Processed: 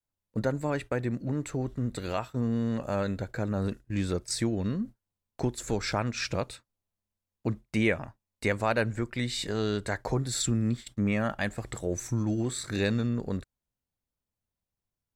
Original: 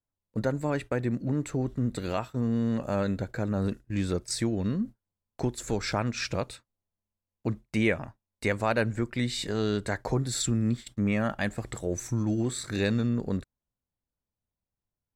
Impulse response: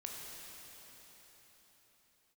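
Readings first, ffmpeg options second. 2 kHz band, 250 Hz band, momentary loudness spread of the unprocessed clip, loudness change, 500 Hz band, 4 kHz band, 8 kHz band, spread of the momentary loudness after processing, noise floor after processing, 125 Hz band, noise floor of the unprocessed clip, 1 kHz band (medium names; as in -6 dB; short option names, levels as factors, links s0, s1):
0.0 dB, -1.5 dB, 7 LU, -1.0 dB, -0.5 dB, 0.0 dB, 0.0 dB, 7 LU, under -85 dBFS, -1.0 dB, under -85 dBFS, 0.0 dB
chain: -af "adynamicequalizer=threshold=0.0126:dfrequency=220:dqfactor=0.75:tfrequency=220:tqfactor=0.75:attack=5:release=100:ratio=0.375:range=2:mode=cutabove:tftype=bell"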